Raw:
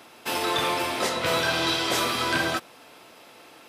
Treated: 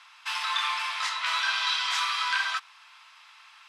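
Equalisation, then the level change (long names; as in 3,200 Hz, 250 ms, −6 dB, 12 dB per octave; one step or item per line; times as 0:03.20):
elliptic high-pass filter 1,000 Hz, stop band 70 dB
low-pass filter 5,900 Hz 12 dB per octave
0.0 dB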